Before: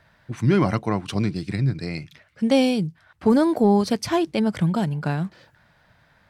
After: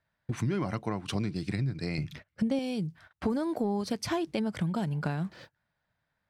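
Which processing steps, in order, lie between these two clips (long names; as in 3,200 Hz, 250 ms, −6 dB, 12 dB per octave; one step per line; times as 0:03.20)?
noise gate −48 dBFS, range −25 dB
0:01.98–0:02.59: low-shelf EQ 450 Hz +9.5 dB
downward compressor 5 to 1, threshold −32 dBFS, peak gain reduction 21 dB
level +3 dB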